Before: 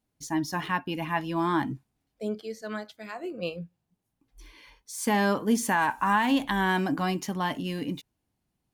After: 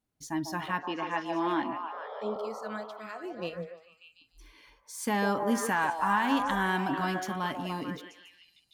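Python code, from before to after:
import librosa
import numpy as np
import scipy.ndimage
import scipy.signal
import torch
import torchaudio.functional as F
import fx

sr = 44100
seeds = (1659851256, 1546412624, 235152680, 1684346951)

p1 = fx.peak_eq(x, sr, hz=1300.0, db=4.0, octaves=0.39)
p2 = fx.spec_paint(p1, sr, seeds[0], shape='noise', start_s=1.92, length_s=0.8, low_hz=410.0, high_hz=1400.0, level_db=-39.0)
p3 = fx.cabinet(p2, sr, low_hz=210.0, low_slope=24, high_hz=5800.0, hz=(380.0, 580.0, 1300.0, 3200.0), db=(4, 5, -4, 3), at=(0.85, 2.36))
p4 = p3 + fx.echo_stepped(p3, sr, ms=147, hz=570.0, octaves=0.7, feedback_pct=70, wet_db=-1, dry=0)
y = p4 * librosa.db_to_amplitude(-4.5)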